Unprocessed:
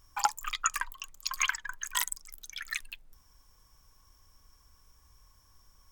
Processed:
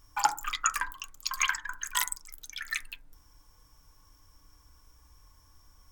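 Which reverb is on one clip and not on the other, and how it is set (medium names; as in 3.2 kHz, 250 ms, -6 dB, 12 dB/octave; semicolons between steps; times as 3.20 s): FDN reverb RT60 0.32 s, low-frequency decay 1.55×, high-frequency decay 0.25×, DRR 5 dB; trim +1 dB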